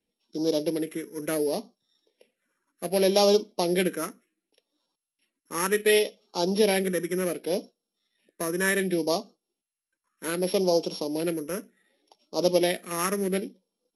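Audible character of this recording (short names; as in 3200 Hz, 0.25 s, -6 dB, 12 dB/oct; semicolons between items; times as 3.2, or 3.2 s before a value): a buzz of ramps at a fixed pitch in blocks of 8 samples; phasing stages 4, 0.67 Hz, lowest notch 740–1800 Hz; MP2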